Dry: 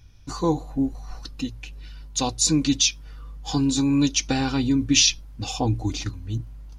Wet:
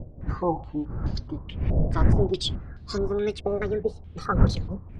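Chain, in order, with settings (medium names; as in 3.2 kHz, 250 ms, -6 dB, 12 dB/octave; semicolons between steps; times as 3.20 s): gliding tape speed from 98% -> 174%; wind noise 110 Hz -20 dBFS; step-sequenced low-pass 4.7 Hz 610–4200 Hz; trim -6.5 dB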